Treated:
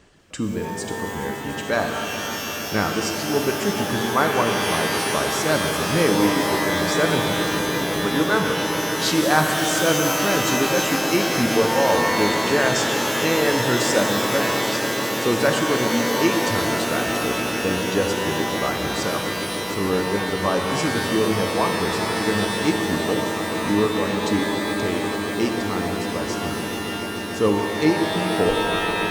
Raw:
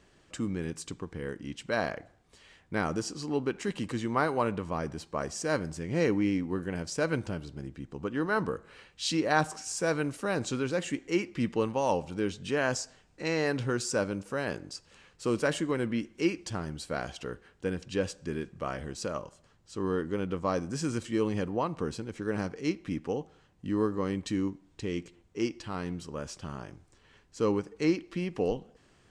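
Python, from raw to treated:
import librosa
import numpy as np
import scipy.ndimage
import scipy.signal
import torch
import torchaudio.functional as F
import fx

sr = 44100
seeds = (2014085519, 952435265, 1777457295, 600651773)

y = fx.dereverb_blind(x, sr, rt60_s=1.7)
y = fx.echo_swell(y, sr, ms=145, loudest=8, wet_db=-16.5)
y = fx.rev_shimmer(y, sr, seeds[0], rt60_s=3.2, semitones=12, shimmer_db=-2, drr_db=3.5)
y = y * librosa.db_to_amplitude(7.5)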